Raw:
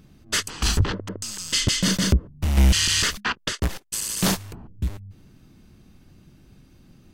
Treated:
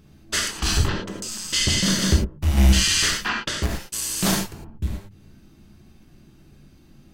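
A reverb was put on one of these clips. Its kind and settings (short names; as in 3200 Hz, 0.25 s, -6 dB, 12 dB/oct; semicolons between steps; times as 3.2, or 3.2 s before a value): non-linear reverb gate 0.13 s flat, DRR -1 dB; gain -2 dB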